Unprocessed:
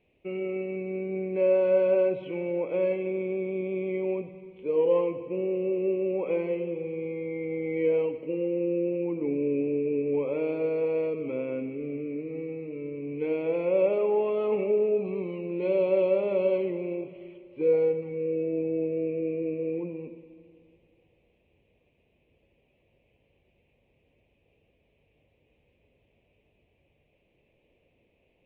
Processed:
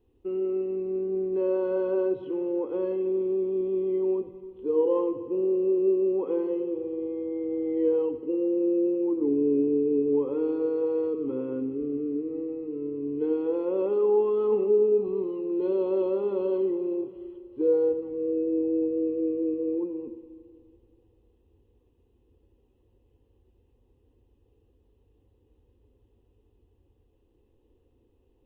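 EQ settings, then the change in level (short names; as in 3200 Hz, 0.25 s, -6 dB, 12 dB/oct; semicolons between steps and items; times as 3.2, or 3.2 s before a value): low shelf 310 Hz +11.5 dB; fixed phaser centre 620 Hz, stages 6; 0.0 dB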